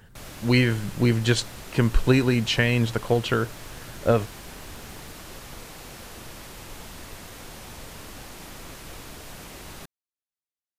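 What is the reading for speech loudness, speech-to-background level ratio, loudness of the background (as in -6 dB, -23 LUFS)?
-23.5 LUFS, 17.5 dB, -41.0 LUFS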